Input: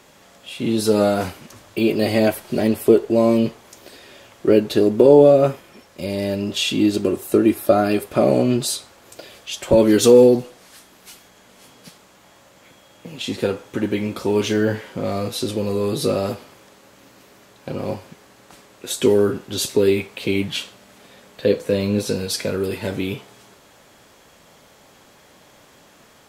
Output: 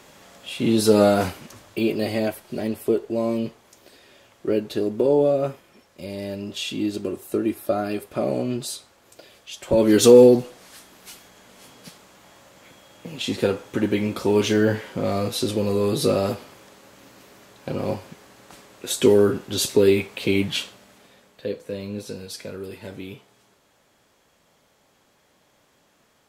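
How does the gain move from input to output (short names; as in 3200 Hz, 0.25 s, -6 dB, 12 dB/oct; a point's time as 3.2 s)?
1.26 s +1 dB
2.34 s -8 dB
9.59 s -8 dB
10 s 0 dB
20.61 s 0 dB
21.51 s -11.5 dB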